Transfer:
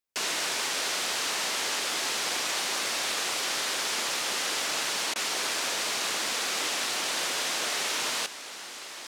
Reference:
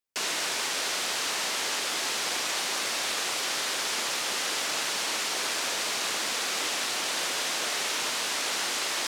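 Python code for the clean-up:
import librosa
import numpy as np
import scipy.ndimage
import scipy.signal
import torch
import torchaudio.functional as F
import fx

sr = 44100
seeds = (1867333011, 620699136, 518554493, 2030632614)

y = fx.fix_declip(x, sr, threshold_db=-20.5)
y = fx.fix_interpolate(y, sr, at_s=(5.14,), length_ms=16.0)
y = fx.gain(y, sr, db=fx.steps((0.0, 0.0), (8.26, 11.5)))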